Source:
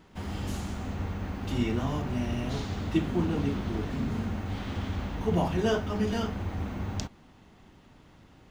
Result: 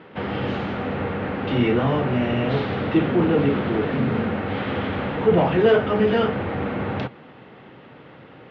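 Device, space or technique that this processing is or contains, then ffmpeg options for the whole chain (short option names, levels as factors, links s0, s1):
overdrive pedal into a guitar cabinet: -filter_complex "[0:a]asplit=2[s0][s1];[s1]highpass=f=720:p=1,volume=8.91,asoftclip=type=tanh:threshold=0.211[s2];[s0][s2]amix=inputs=2:normalize=0,lowpass=f=1500:p=1,volume=0.501,highpass=96,equalizer=f=130:t=q:w=4:g=9,equalizer=f=490:t=q:w=4:g=7,equalizer=f=700:t=q:w=4:g=-3,equalizer=f=1000:t=q:w=4:g=-5,lowpass=f=3500:w=0.5412,lowpass=f=3500:w=1.3066,volume=1.78"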